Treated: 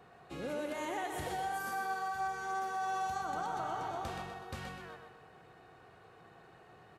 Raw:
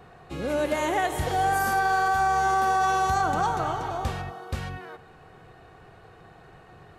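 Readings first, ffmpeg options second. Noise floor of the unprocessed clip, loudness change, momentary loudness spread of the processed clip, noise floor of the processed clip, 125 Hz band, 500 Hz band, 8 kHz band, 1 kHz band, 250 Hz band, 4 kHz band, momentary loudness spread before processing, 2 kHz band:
−51 dBFS, −13.0 dB, 14 LU, −59 dBFS, −16.0 dB, −12.0 dB, −12.0 dB, −13.0 dB, −11.0 dB, −11.0 dB, 13 LU, −12.5 dB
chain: -filter_complex "[0:a]highpass=frequency=170:poles=1,acompressor=threshold=-28dB:ratio=6,asplit=2[link_01][link_02];[link_02]aecho=0:1:125|250|375|500|625:0.501|0.21|0.0884|0.0371|0.0156[link_03];[link_01][link_03]amix=inputs=2:normalize=0,volume=-7.5dB"

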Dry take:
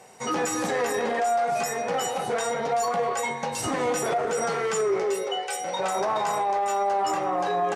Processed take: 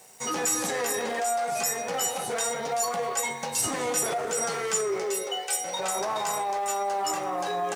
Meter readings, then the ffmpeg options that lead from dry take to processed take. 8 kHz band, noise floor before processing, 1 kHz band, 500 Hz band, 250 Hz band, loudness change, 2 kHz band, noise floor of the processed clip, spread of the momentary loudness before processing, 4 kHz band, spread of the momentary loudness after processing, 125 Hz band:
+6.0 dB, −33 dBFS, −4.0 dB, −4.5 dB, −4.5 dB, −1.5 dB, −2.0 dB, −35 dBFS, 4 LU, +1.5 dB, 3 LU, −4.5 dB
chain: -af "aeval=exprs='sgn(val(0))*max(abs(val(0))-0.00106,0)':channel_layout=same,crystalizer=i=3:c=0,volume=-4.5dB"

